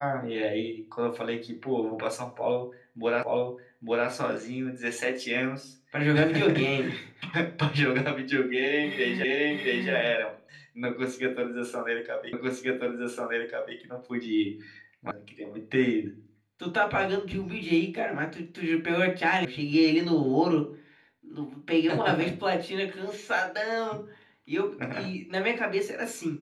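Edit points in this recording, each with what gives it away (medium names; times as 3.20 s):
3.23 s: repeat of the last 0.86 s
9.24 s: repeat of the last 0.67 s
12.33 s: repeat of the last 1.44 s
15.11 s: sound stops dead
19.45 s: sound stops dead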